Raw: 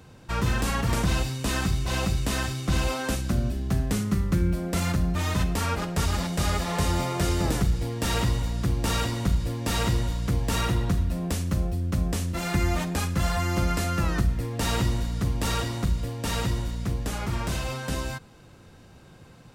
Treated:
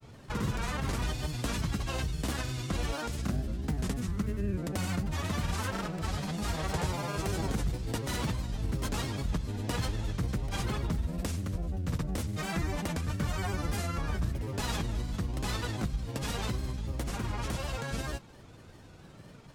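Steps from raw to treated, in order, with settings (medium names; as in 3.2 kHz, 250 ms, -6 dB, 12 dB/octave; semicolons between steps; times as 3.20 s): compression 2:1, threshold -32 dBFS, peak gain reduction 8 dB; granulator 100 ms, grains 20 per s, pitch spread up and down by 3 st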